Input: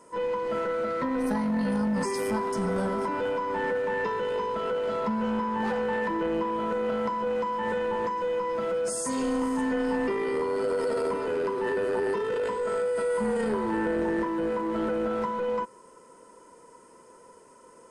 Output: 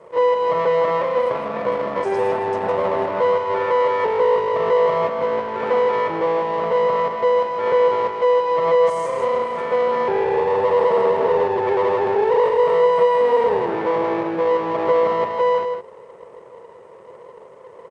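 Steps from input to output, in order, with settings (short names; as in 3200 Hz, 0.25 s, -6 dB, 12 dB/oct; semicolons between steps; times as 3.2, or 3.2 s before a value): band shelf 510 Hz +13 dB; notch 780 Hz, Q 12; limiter -12 dBFS, peak gain reduction 5 dB; fixed phaser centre 1000 Hz, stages 6; half-wave rectifier; BPF 200–3900 Hz; echo 0.159 s -7 dB; gain +7 dB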